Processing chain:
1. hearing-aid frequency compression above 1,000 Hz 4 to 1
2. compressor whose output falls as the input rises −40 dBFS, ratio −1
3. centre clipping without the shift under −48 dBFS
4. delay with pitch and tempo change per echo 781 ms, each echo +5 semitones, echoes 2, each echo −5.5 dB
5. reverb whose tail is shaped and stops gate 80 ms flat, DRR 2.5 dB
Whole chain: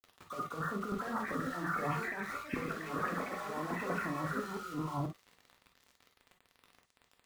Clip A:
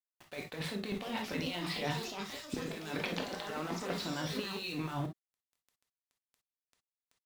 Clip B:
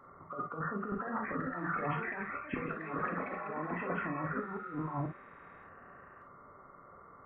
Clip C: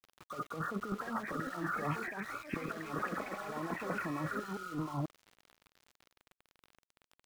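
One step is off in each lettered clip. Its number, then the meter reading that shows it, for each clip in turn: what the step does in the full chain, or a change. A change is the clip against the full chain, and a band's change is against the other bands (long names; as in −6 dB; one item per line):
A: 1, 4 kHz band +13.0 dB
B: 3, distortion level −16 dB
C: 5, change in crest factor +1.5 dB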